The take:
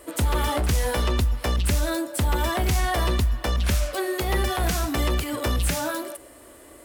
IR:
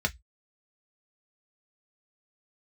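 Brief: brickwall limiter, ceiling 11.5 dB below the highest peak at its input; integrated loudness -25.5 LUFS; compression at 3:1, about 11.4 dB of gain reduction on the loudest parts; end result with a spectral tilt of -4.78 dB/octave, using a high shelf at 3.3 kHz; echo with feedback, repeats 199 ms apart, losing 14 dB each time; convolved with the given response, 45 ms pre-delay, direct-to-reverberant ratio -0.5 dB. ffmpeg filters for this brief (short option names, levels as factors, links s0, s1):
-filter_complex "[0:a]highshelf=f=3300:g=5,acompressor=threshold=0.02:ratio=3,alimiter=level_in=2.24:limit=0.0631:level=0:latency=1,volume=0.447,aecho=1:1:199|398:0.2|0.0399,asplit=2[s0][s1];[1:a]atrim=start_sample=2205,adelay=45[s2];[s1][s2]afir=irnorm=-1:irlink=0,volume=0.398[s3];[s0][s3]amix=inputs=2:normalize=0,volume=2.24"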